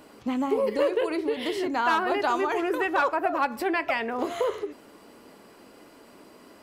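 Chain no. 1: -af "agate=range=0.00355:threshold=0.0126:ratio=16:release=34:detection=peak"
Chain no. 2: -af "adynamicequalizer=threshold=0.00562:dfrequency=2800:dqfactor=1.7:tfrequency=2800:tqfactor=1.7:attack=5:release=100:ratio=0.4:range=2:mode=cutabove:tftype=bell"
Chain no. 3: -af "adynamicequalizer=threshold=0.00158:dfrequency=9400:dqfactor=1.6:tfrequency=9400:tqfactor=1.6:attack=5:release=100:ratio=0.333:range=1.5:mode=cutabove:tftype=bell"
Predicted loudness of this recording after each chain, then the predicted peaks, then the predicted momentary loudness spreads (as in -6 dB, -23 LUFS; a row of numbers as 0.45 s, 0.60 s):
-26.0 LUFS, -26.5 LUFS, -26.5 LUFS; -12.0 dBFS, -12.5 dBFS, -12.0 dBFS; 5 LU, 5 LU, 5 LU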